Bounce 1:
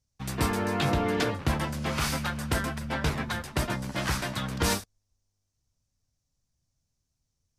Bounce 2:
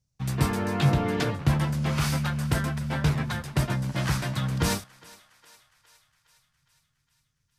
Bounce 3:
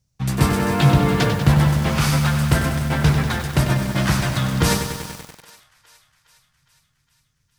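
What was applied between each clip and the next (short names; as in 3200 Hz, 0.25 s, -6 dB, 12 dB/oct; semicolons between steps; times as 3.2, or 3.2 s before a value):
bell 140 Hz +11 dB 0.63 oct; thinning echo 0.411 s, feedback 62%, high-pass 650 Hz, level -20 dB; gain -1 dB
on a send at -20.5 dB: reverb RT60 0.95 s, pre-delay 7 ms; on the sum: lo-fi delay 96 ms, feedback 80%, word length 7-bit, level -8 dB; gain +7 dB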